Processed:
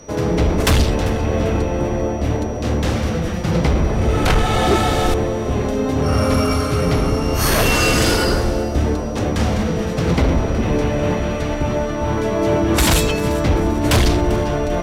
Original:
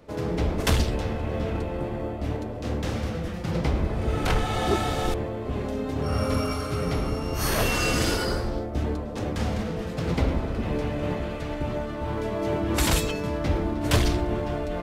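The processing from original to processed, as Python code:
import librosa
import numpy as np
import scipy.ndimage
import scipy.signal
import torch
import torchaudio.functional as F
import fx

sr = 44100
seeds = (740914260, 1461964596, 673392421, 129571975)

y = fx.fold_sine(x, sr, drive_db=6, ceiling_db=-9.0)
y = fx.echo_alternate(y, sr, ms=197, hz=910.0, feedback_pct=61, wet_db=-13)
y = y + 10.0 ** (-44.0 / 20.0) * np.sin(2.0 * np.pi * 5800.0 * np.arange(len(y)) / sr)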